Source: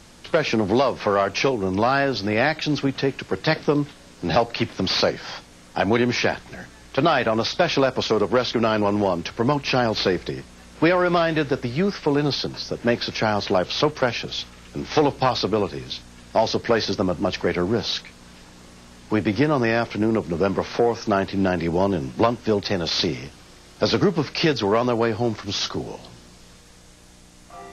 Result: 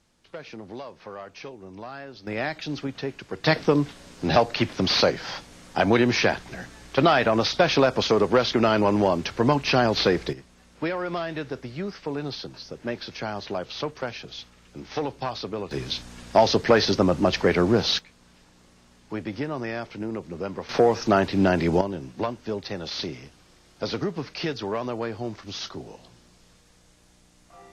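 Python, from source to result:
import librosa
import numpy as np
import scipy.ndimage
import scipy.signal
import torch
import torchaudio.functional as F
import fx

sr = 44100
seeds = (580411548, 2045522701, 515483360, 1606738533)

y = fx.gain(x, sr, db=fx.steps((0.0, -19.0), (2.27, -8.5), (3.44, 0.0), (10.33, -10.0), (15.71, 2.0), (17.99, -10.5), (20.69, 1.0), (21.81, -9.0)))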